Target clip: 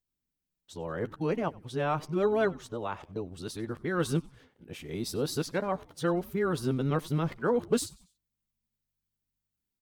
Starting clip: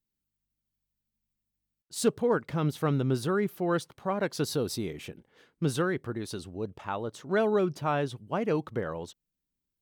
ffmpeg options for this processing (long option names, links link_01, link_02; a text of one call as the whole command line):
ffmpeg -i in.wav -filter_complex "[0:a]areverse,asplit=2[link_01][link_02];[link_02]adelay=12,volume=-12.5dB[link_03];[link_01][link_03]amix=inputs=2:normalize=0,asplit=4[link_04][link_05][link_06][link_07];[link_05]adelay=94,afreqshift=-140,volume=-22.5dB[link_08];[link_06]adelay=188,afreqshift=-280,volume=-29.8dB[link_09];[link_07]adelay=282,afreqshift=-420,volume=-37.2dB[link_10];[link_04][link_08][link_09][link_10]amix=inputs=4:normalize=0,volume=-1.5dB" out.wav